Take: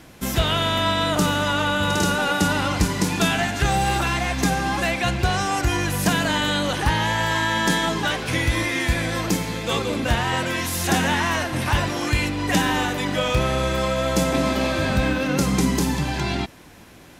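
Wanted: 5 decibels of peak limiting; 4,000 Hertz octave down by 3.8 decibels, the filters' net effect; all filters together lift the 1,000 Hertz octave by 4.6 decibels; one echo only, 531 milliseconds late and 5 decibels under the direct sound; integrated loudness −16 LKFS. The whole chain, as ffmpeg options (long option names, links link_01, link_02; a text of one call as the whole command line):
ffmpeg -i in.wav -af "equalizer=frequency=1000:width_type=o:gain=6,equalizer=frequency=4000:width_type=o:gain=-5.5,alimiter=limit=-11.5dB:level=0:latency=1,aecho=1:1:531:0.562,volume=4.5dB" out.wav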